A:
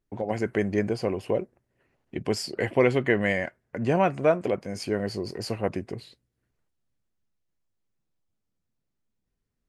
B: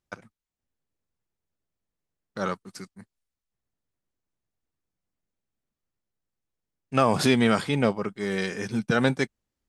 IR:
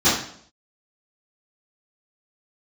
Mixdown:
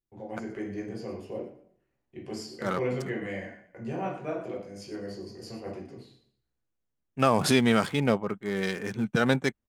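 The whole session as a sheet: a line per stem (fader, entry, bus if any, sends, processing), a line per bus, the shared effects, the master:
-16.0 dB, 0.00 s, send -17.5 dB, echo send -11.5 dB, dry
-1.5 dB, 0.25 s, no send, no echo send, Wiener smoothing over 9 samples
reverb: on, RT60 0.60 s, pre-delay 3 ms
echo: feedback echo 0.116 s, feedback 32%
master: high shelf 7100 Hz +6.5 dB

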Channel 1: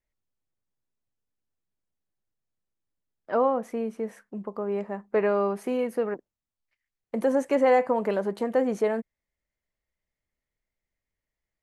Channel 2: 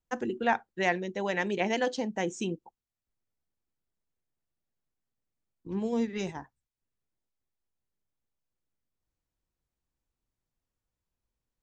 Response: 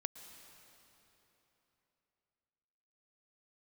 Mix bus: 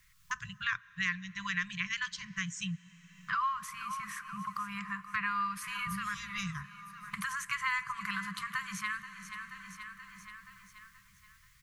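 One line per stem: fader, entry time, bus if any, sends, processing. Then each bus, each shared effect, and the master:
+1.0 dB, 0.00 s, send -5.5 dB, echo send -13 dB, dry
-0.5 dB, 0.20 s, send -12.5 dB, no echo send, low shelf 140 Hz +7.5 dB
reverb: on, RT60 3.5 s, pre-delay 0.105 s
echo: feedback echo 0.479 s, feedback 41%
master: brick-wall FIR band-stop 180–1000 Hz; three-band squash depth 70%

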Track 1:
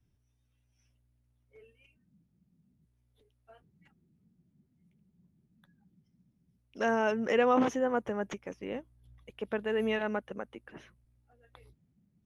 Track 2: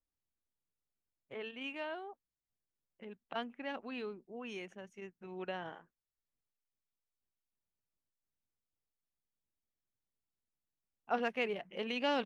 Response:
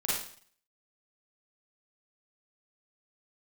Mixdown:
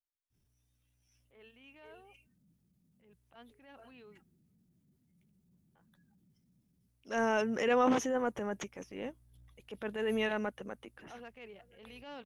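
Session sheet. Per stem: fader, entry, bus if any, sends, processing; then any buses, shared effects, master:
-1.5 dB, 0.30 s, no send, high shelf 4400 Hz +9.5 dB
-13.5 dB, 0.00 s, muted 4.24–5.75, no send, dry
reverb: off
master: transient shaper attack -8 dB, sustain +1 dB

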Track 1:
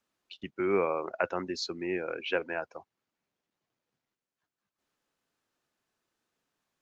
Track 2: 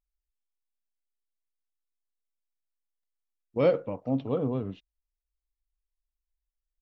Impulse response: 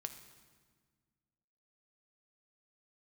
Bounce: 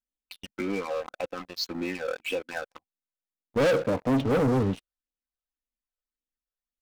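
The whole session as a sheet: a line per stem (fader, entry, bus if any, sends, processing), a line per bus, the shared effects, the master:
-10.5 dB, 0.00 s, no send, comb 3.9 ms, depth 77%; compressor 3:1, threshold -35 dBFS, peak gain reduction 10.5 dB; phaser stages 8, 1.8 Hz, lowest notch 260–1600 Hz
-5.5 dB, 0.00 s, no send, notch 360 Hz, Q 12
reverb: off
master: sample leveller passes 5

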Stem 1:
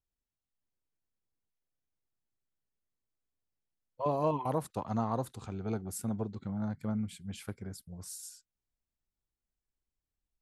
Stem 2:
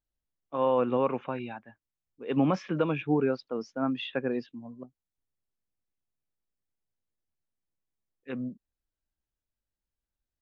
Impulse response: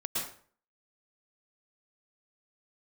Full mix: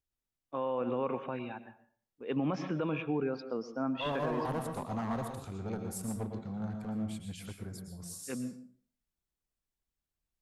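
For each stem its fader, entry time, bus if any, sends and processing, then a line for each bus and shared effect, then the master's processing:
-4.5 dB, 0.00 s, send -5 dB, one-sided clip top -32.5 dBFS
-4.0 dB, 0.00 s, send -16.5 dB, gate -52 dBFS, range -8 dB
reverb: on, RT60 0.45 s, pre-delay 0.102 s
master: limiter -24 dBFS, peak gain reduction 7.5 dB

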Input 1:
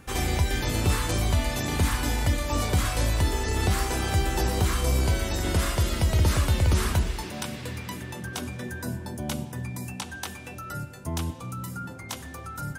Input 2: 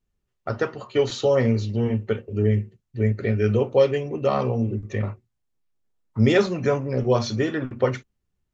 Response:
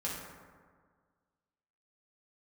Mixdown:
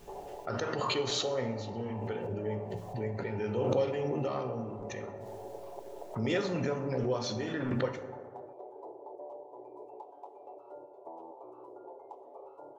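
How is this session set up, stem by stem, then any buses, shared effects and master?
+2.5 dB, 0.00 s, no send, minimum comb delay 7.1 ms; elliptic band-pass 370–900 Hz; compressor 4:1, threshold -46 dBFS, peak gain reduction 15.5 dB
-14.5 dB, 0.00 s, send -8 dB, low shelf 170 Hz -8 dB; backwards sustainer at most 21 dB/s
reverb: on, RT60 1.7 s, pre-delay 3 ms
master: dry

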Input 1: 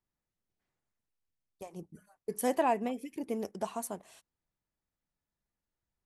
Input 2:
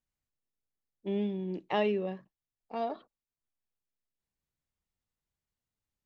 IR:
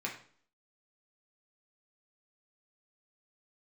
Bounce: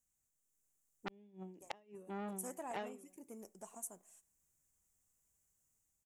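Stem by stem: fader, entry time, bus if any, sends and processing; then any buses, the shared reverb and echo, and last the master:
-18.0 dB, 0.00 s, send -16.5 dB, no echo send, dry
-2.0 dB, 0.00 s, no send, echo send -10.5 dB, AGC gain up to 5 dB; ending taper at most 110 dB/s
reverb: on, RT60 0.50 s, pre-delay 3 ms
echo: echo 1.03 s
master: resonant high shelf 5500 Hz +10 dB, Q 3; flipped gate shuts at -24 dBFS, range -34 dB; core saturation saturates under 2800 Hz

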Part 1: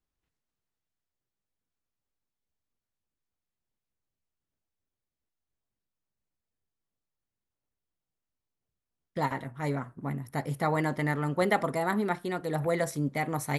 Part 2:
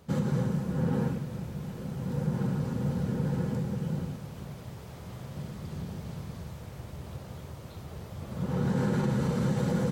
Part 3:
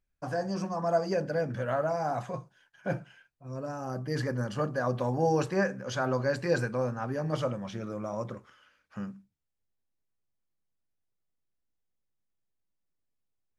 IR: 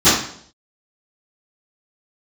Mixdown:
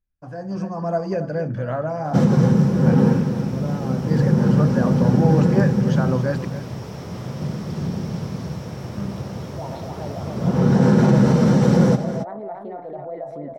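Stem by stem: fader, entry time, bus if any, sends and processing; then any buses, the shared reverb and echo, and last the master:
-13.5 dB, 0.40 s, no send, echo send -4 dB, band-pass 660 Hz, Q 5.2; fast leveller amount 70%
+1.0 dB, 2.05 s, no send, echo send -10.5 dB, Bessel high-pass 200 Hz, order 2; bell 5500 Hz +13 dB 0.23 oct
-7.5 dB, 0.00 s, muted 6.45–8.96, no send, echo send -13 dB, dry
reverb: off
echo: echo 0.275 s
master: high shelf 5200 Hz -8.5 dB; AGC gain up to 9 dB; low shelf 330 Hz +9 dB

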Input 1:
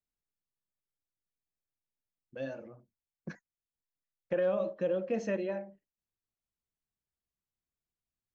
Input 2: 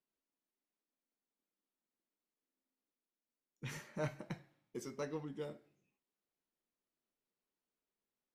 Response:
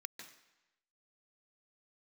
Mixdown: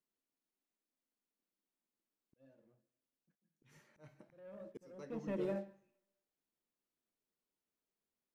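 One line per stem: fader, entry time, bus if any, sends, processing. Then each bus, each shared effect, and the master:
4.92 s -22.5 dB -> 5.49 s -14 dB, 0.00 s, send -12.5 dB, low shelf 460 Hz +9.5 dB; sample leveller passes 2; upward expander 1.5:1, over -35 dBFS
-3.0 dB, 0.00 s, no send, dry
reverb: on, RT60 1.0 s, pre-delay 0.143 s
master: bell 250 Hz +3 dB 2.4 oct; auto swell 0.764 s

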